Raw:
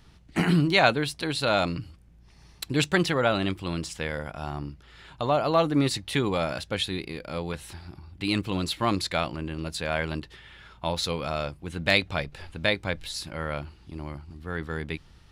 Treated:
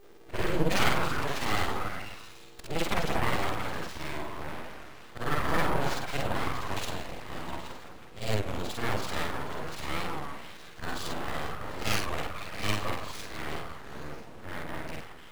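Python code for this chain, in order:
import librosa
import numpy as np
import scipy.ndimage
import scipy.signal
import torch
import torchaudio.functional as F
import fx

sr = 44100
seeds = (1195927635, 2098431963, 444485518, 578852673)

y = fx.frame_reverse(x, sr, frame_ms=134.0)
y = fx.doubler(y, sr, ms=48.0, db=-3.5)
y = fx.echo_stepped(y, sr, ms=165, hz=510.0, octaves=0.7, feedback_pct=70, wet_db=-2.0)
y = np.repeat(y[::4], 4)[:len(y)]
y = fx.high_shelf(y, sr, hz=4400.0, db=-11.0)
y = fx.dmg_buzz(y, sr, base_hz=400.0, harmonics=37, level_db=-53.0, tilt_db=-7, odd_only=False)
y = np.abs(y)
y = fx.record_warp(y, sr, rpm=33.33, depth_cents=160.0)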